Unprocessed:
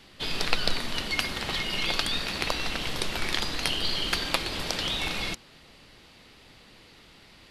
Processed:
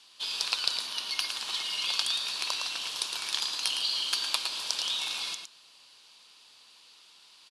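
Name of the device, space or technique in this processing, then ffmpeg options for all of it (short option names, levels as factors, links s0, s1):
piezo pickup straight into a mixer: -filter_complex "[0:a]lowpass=6400,aderivative,equalizer=f=1000:t=o:w=0.33:g=8,equalizer=f=2000:t=o:w=0.33:g=-11,equalizer=f=10000:t=o:w=0.33:g=5,asplit=2[s0][s1];[s1]adelay=110.8,volume=0.501,highshelf=f=4000:g=-2.49[s2];[s0][s2]amix=inputs=2:normalize=0,asettb=1/sr,asplit=3[s3][s4][s5];[s3]atrim=end=0.874[s6];[s4]atrim=start=0.87:end=1.28,asetpts=PTS-STARTPTS,afade=t=in:d=0.004:c=qsin,afade=t=out:st=0.406:d=0.004:c=qsin,equalizer=f=7600:t=o:w=0.21:g=-10[s7];[s5]atrim=start=1.276[s8];[s6][s7]acrossfade=d=0.004:c1=hsin:c2=qsin[s9];[s9][s8]acrossfade=d=0.004:c1=qsin:c2=hsin,volume=2"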